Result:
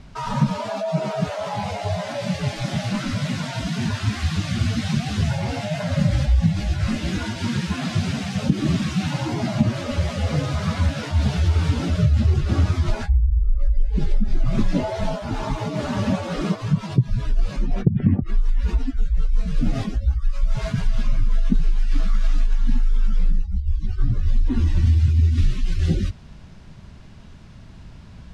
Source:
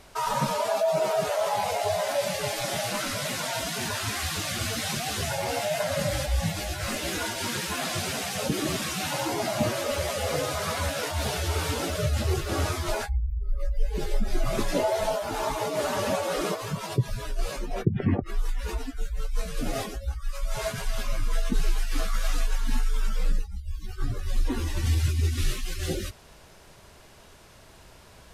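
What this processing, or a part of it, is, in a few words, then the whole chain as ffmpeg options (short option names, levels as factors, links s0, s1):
jukebox: -af "lowpass=5300,lowshelf=f=300:t=q:w=1.5:g=12,acompressor=threshold=0.224:ratio=6"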